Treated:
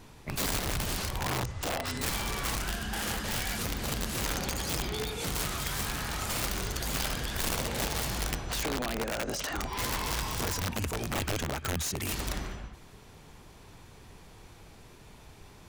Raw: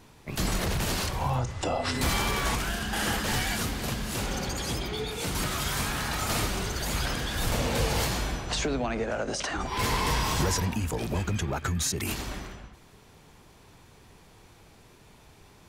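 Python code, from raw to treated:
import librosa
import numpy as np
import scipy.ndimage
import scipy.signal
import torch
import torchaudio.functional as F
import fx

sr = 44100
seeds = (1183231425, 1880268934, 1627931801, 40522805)

y = fx.low_shelf(x, sr, hz=62.0, db=5.5)
y = fx.rider(y, sr, range_db=10, speed_s=0.5)
y = (np.mod(10.0 ** (20.5 / 20.0) * y + 1.0, 2.0) - 1.0) / 10.0 ** (20.5 / 20.0)
y = F.gain(torch.from_numpy(y), -4.5).numpy()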